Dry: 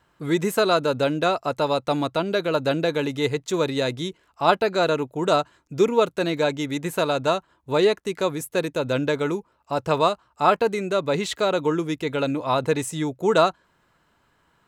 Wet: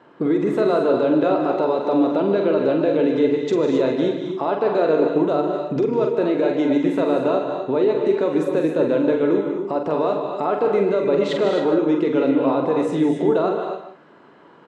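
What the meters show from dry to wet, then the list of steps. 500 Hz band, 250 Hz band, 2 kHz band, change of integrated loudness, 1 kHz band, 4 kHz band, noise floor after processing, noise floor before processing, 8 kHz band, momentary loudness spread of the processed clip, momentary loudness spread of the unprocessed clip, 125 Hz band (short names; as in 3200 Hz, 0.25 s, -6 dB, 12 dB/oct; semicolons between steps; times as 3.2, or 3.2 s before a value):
+4.0 dB, +7.0 dB, -4.0 dB, +3.5 dB, -1.5 dB, -7.5 dB, -49 dBFS, -65 dBFS, under -10 dB, 5 LU, 6 LU, -1.5 dB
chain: bell 340 Hz +14.5 dB 2.9 oct; compressor, threshold -20 dBFS, peak gain reduction 19 dB; limiter -18 dBFS, peak gain reduction 9 dB; BPF 210–3800 Hz; doubler 45 ms -6 dB; outdoor echo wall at 26 m, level -10 dB; non-linear reverb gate 0.29 s rising, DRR 4 dB; gain +5.5 dB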